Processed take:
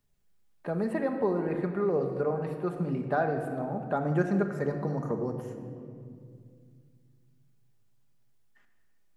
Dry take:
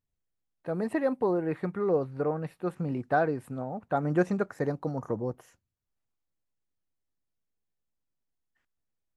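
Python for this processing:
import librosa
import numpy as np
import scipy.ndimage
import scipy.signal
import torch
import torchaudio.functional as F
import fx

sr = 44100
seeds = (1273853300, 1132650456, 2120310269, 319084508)

y = fx.room_shoebox(x, sr, seeds[0], volume_m3=2400.0, walls='mixed', distance_m=1.3)
y = fx.band_squash(y, sr, depth_pct=40)
y = y * 10.0 ** (-2.0 / 20.0)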